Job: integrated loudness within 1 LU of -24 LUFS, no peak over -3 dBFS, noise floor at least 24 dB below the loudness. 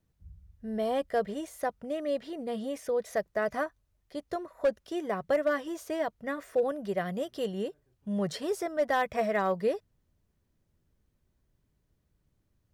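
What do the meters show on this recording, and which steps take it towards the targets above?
clipped 0.3%; flat tops at -19.5 dBFS; loudness -32.0 LUFS; peak -19.5 dBFS; loudness target -24.0 LUFS
-> clip repair -19.5 dBFS; gain +8 dB

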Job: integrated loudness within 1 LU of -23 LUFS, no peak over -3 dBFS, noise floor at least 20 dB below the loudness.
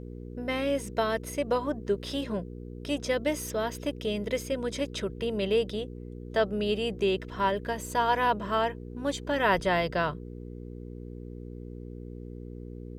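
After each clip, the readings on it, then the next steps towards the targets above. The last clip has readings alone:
hum 60 Hz; harmonics up to 480 Hz; hum level -38 dBFS; loudness -29.5 LUFS; peak -11.5 dBFS; loudness target -23.0 LUFS
-> de-hum 60 Hz, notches 8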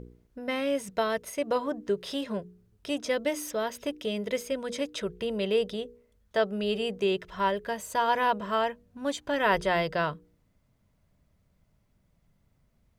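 hum none; loudness -30.0 LUFS; peak -11.0 dBFS; loudness target -23.0 LUFS
-> gain +7 dB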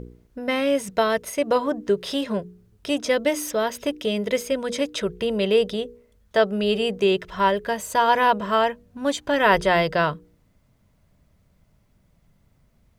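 loudness -23.0 LUFS; peak -4.0 dBFS; noise floor -63 dBFS

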